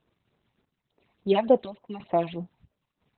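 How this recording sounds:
phaser sweep stages 8, 3.4 Hz, lowest notch 410–4,000 Hz
a quantiser's noise floor 12 bits, dither none
chopped level 1 Hz, depth 65%, duty 65%
Opus

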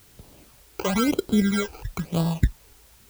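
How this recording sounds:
aliases and images of a low sample rate 1,800 Hz, jitter 0%
phaser sweep stages 12, 1 Hz, lowest notch 180–2,200 Hz
a quantiser's noise floor 10 bits, dither triangular

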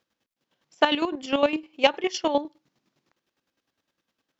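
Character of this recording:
chopped level 9.8 Hz, depth 65%, duty 30%

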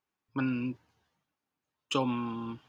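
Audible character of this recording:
background noise floor −89 dBFS
spectral slope −4.5 dB per octave

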